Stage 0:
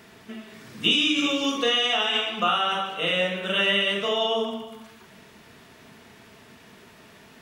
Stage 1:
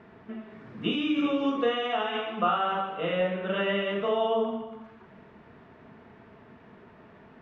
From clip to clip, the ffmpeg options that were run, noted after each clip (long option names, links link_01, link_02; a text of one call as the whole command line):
ffmpeg -i in.wav -af "lowpass=1400" out.wav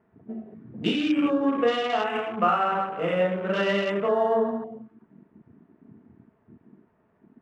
ffmpeg -i in.wav -af "adynamicsmooth=sensitivity=7.5:basefreq=2000,afwtdn=0.0112,volume=3.5dB" out.wav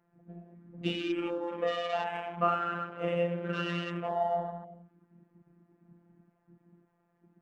ffmpeg -i in.wav -af "afftfilt=real='hypot(re,im)*cos(PI*b)':imag='0':win_size=1024:overlap=0.75,volume=-4dB" out.wav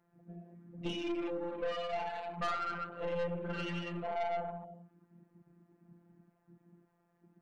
ffmpeg -i in.wav -af "aeval=exprs='(tanh(35.5*val(0)+0.35)-tanh(0.35))/35.5':channel_layout=same" out.wav